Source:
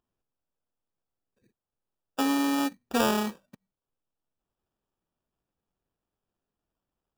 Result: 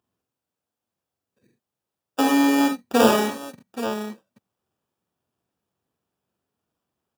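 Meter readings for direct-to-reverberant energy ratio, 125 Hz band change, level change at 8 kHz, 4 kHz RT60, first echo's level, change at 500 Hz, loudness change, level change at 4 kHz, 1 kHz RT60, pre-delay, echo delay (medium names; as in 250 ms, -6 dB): no reverb, +5.5 dB, +6.0 dB, no reverb, -5.5 dB, +10.0 dB, +6.5 dB, +5.5 dB, no reverb, no reverb, 45 ms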